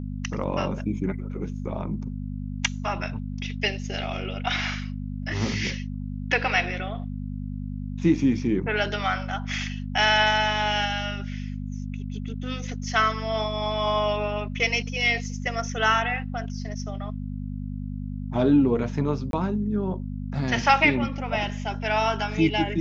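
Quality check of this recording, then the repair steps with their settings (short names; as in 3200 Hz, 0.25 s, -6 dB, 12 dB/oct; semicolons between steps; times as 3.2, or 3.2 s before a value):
hum 50 Hz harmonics 5 -32 dBFS
19.31–19.33 gap 22 ms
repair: de-hum 50 Hz, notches 5; interpolate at 19.31, 22 ms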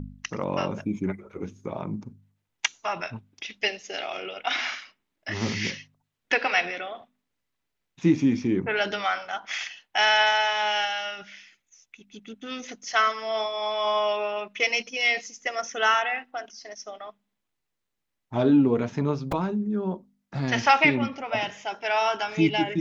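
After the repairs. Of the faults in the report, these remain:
none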